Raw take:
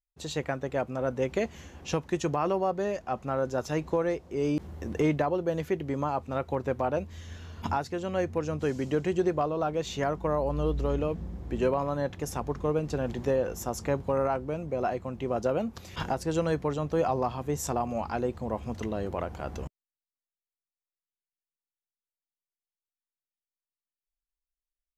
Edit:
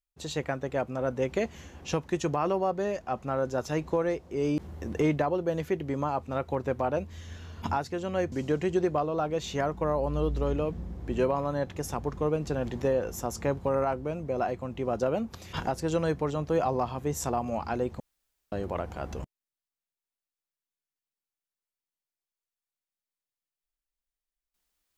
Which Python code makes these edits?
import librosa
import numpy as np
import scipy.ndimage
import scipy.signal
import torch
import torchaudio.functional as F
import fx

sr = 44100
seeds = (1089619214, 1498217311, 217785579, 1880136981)

y = fx.edit(x, sr, fx.cut(start_s=8.32, length_s=0.43),
    fx.room_tone_fill(start_s=18.43, length_s=0.52), tone=tone)